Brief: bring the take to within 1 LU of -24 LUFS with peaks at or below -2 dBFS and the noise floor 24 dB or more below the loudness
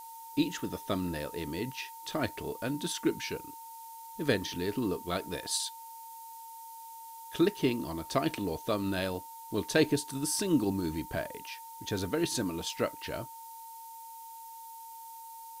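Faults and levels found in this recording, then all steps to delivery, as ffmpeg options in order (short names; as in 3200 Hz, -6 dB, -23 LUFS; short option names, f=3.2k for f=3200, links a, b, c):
steady tone 910 Hz; tone level -45 dBFS; noise floor -47 dBFS; noise floor target -57 dBFS; loudness -33.0 LUFS; peak -13.0 dBFS; loudness target -24.0 LUFS
-> -af "bandreject=f=910:w=30"
-af "afftdn=nr=10:nf=-47"
-af "volume=9dB"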